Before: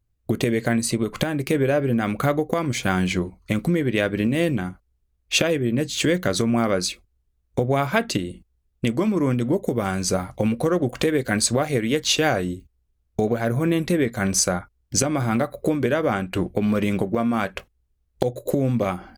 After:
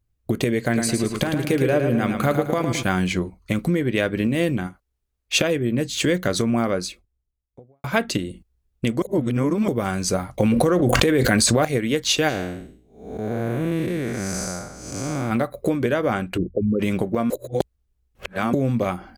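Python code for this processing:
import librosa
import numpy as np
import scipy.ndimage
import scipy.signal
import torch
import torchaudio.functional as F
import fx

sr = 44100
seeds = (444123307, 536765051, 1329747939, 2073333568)

y = fx.echo_feedback(x, sr, ms=109, feedback_pct=46, wet_db=-6.5, at=(0.7, 2.82), fade=0.02)
y = fx.low_shelf(y, sr, hz=270.0, db=-9.0, at=(4.67, 5.35))
y = fx.studio_fade_out(y, sr, start_s=6.4, length_s=1.44)
y = fx.env_flatten(y, sr, amount_pct=100, at=(10.38, 11.65))
y = fx.spec_blur(y, sr, span_ms=309.0, at=(12.28, 15.3), fade=0.02)
y = fx.envelope_sharpen(y, sr, power=3.0, at=(16.36, 16.79), fade=0.02)
y = fx.edit(y, sr, fx.reverse_span(start_s=9.02, length_s=0.66),
    fx.reverse_span(start_s=17.3, length_s=1.23), tone=tone)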